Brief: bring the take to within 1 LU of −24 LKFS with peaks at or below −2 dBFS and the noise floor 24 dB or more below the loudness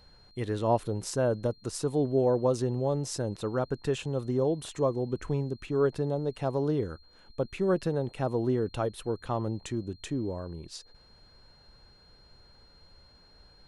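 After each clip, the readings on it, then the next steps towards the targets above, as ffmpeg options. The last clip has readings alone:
interfering tone 4,200 Hz; level of the tone −59 dBFS; integrated loudness −30.5 LKFS; sample peak −13.5 dBFS; target loudness −24.0 LKFS
→ -af "bandreject=frequency=4200:width=30"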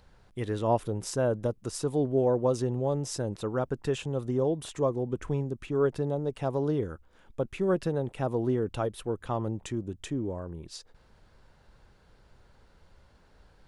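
interfering tone none found; integrated loudness −30.5 LKFS; sample peak −13.5 dBFS; target loudness −24.0 LKFS
→ -af "volume=6.5dB"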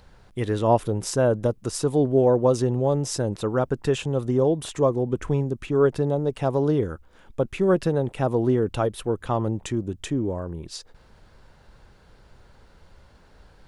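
integrated loudness −24.0 LKFS; sample peak −7.0 dBFS; background noise floor −54 dBFS

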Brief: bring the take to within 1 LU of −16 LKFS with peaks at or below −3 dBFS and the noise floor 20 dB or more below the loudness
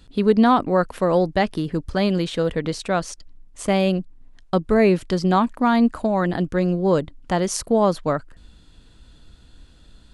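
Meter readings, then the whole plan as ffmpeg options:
integrated loudness −21.0 LKFS; sample peak −4.5 dBFS; target loudness −16.0 LKFS
→ -af "volume=5dB,alimiter=limit=-3dB:level=0:latency=1"

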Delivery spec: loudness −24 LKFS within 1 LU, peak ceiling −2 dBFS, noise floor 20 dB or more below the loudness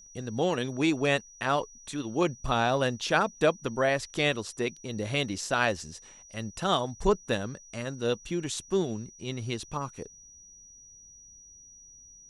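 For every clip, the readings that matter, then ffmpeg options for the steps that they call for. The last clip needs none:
interfering tone 5,800 Hz; level of the tone −50 dBFS; integrated loudness −29.5 LKFS; sample peak −10.5 dBFS; target loudness −24.0 LKFS
→ -af "bandreject=frequency=5800:width=30"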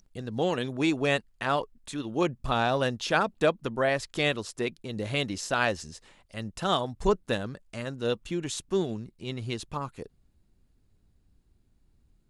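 interfering tone none found; integrated loudness −29.5 LKFS; sample peak −10.0 dBFS; target loudness −24.0 LKFS
→ -af "volume=5.5dB"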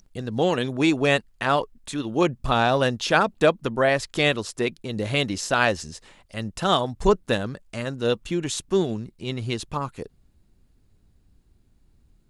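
integrated loudness −24.0 LKFS; sample peak −4.5 dBFS; background noise floor −63 dBFS

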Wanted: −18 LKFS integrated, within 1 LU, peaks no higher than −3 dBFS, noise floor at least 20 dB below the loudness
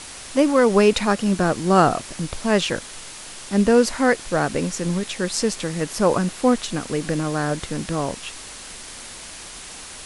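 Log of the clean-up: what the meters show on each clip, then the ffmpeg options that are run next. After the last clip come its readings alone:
background noise floor −38 dBFS; target noise floor −41 dBFS; integrated loudness −21.0 LKFS; sample peak −2.0 dBFS; target loudness −18.0 LKFS
→ -af "afftdn=noise_reduction=6:noise_floor=-38"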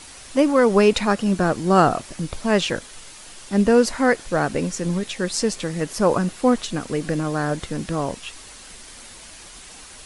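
background noise floor −42 dBFS; integrated loudness −21.0 LKFS; sample peak −2.0 dBFS; target loudness −18.0 LKFS
→ -af "volume=3dB,alimiter=limit=-3dB:level=0:latency=1"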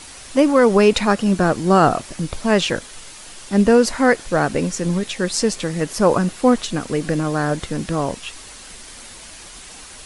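integrated loudness −18.5 LKFS; sample peak −3.0 dBFS; background noise floor −39 dBFS

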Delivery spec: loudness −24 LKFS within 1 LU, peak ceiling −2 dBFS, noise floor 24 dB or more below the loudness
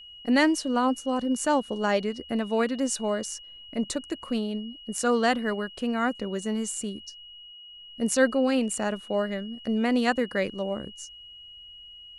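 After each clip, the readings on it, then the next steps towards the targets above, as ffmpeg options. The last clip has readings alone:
interfering tone 2,900 Hz; level of the tone −44 dBFS; integrated loudness −27.0 LKFS; sample peak −9.0 dBFS; target loudness −24.0 LKFS
→ -af "bandreject=frequency=2900:width=30"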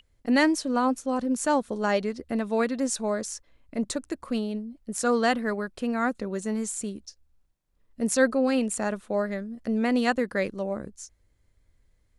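interfering tone none found; integrated loudness −27.0 LKFS; sample peak −9.0 dBFS; target loudness −24.0 LKFS
→ -af "volume=3dB"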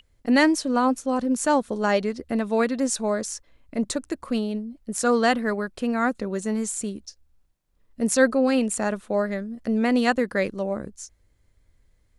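integrated loudness −24.0 LKFS; sample peak −6.0 dBFS; background noise floor −65 dBFS

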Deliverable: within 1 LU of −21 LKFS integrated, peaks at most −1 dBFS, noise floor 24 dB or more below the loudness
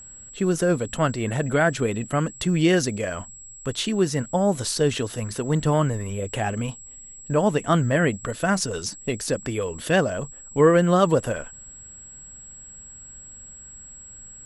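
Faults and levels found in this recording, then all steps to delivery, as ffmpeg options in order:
interfering tone 7,700 Hz; level of the tone −41 dBFS; integrated loudness −23.5 LKFS; sample peak −5.5 dBFS; target loudness −21.0 LKFS
→ -af "bandreject=frequency=7700:width=30"
-af "volume=2.5dB"

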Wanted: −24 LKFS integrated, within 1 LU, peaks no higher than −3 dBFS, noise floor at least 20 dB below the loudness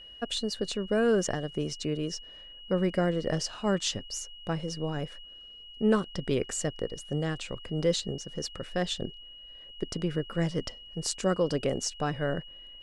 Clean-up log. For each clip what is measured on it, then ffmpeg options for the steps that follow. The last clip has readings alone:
interfering tone 2,900 Hz; level of the tone −46 dBFS; integrated loudness −31.0 LKFS; sample peak −12.0 dBFS; target loudness −24.0 LKFS
→ -af "bandreject=frequency=2900:width=30"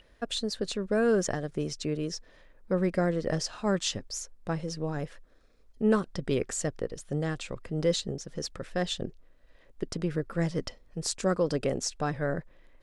interfering tone none found; integrated loudness −31.0 LKFS; sample peak −12.0 dBFS; target loudness −24.0 LKFS
→ -af "volume=7dB"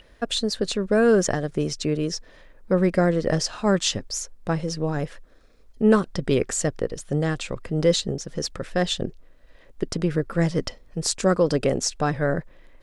integrated loudness −24.0 LKFS; sample peak −5.0 dBFS; background noise floor −53 dBFS

